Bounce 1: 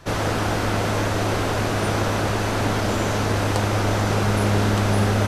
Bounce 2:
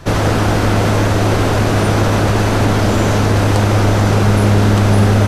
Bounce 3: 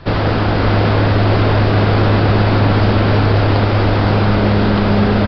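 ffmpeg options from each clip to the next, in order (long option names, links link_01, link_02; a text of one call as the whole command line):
ffmpeg -i in.wav -filter_complex "[0:a]lowshelf=frequency=380:gain=5.5,asplit=2[link_01][link_02];[link_02]alimiter=limit=-13.5dB:level=0:latency=1,volume=2dB[link_03];[link_01][link_03]amix=inputs=2:normalize=0" out.wav
ffmpeg -i in.wav -filter_complex "[0:a]asplit=2[link_01][link_02];[link_02]aecho=0:1:521:0.501[link_03];[link_01][link_03]amix=inputs=2:normalize=0,aresample=11025,aresample=44100,volume=-1dB" out.wav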